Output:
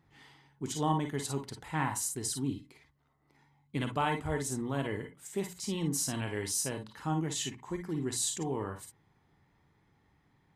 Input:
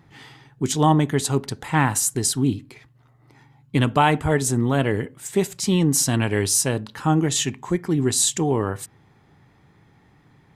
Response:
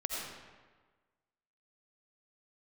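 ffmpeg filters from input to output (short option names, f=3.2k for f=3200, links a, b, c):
-filter_complex "[0:a]bandreject=f=60:t=h:w=6,bandreject=f=120:t=h:w=6,bandreject=f=180:t=h:w=6[a];[1:a]atrim=start_sample=2205,afade=t=out:st=0.14:d=0.01,atrim=end_sample=6615,asetrate=70560,aresample=44100[b];[a][b]afir=irnorm=-1:irlink=0,volume=-8.5dB"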